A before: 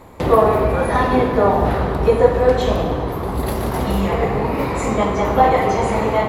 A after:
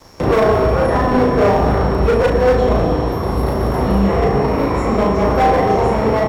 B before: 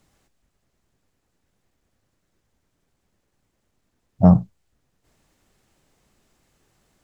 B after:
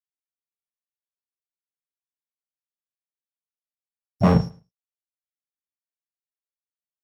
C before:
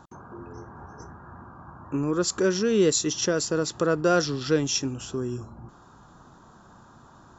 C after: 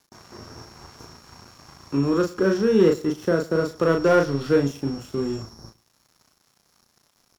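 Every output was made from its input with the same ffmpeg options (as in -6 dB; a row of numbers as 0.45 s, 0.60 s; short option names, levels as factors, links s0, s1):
-filter_complex "[0:a]equalizer=f=870:w=4.3:g=-2.5,acrossover=split=170|850|1800[s0][s1][s2][s3];[s2]alimiter=limit=0.1:level=0:latency=1:release=259[s4];[s3]acompressor=threshold=0.00562:ratio=12[s5];[s0][s1][s4][s5]amix=inputs=4:normalize=0,asoftclip=type=hard:threshold=0.188,aeval=exprs='val(0)+0.00316*sin(2*PI*5500*n/s)':c=same,aeval=exprs='sgn(val(0))*max(abs(val(0))-0.00631,0)':c=same,asplit=2[s6][s7];[s7]adelay=36,volume=0.631[s8];[s6][s8]amix=inputs=2:normalize=0,aecho=1:1:108|216:0.0891|0.0143,volume=1.5"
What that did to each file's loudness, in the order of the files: +2.0 LU, -3.5 LU, +3.0 LU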